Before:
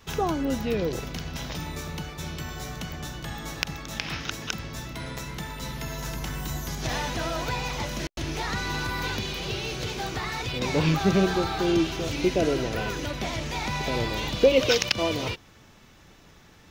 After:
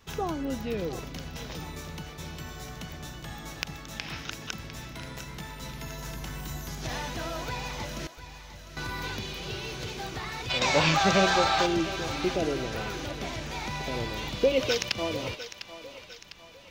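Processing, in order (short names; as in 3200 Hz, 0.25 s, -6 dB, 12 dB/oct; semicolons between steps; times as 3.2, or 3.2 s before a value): 8.09–8.77 passive tone stack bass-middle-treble 10-0-1; 10.5–11.66 spectral gain 500–8700 Hz +11 dB; on a send: thinning echo 0.702 s, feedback 53%, high-pass 550 Hz, level -11.5 dB; on the sum: gain -5 dB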